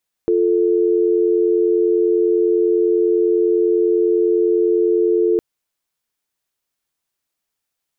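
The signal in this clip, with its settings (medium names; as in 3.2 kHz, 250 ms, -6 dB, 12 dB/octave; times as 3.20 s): call progress tone dial tone, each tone -15.5 dBFS 5.11 s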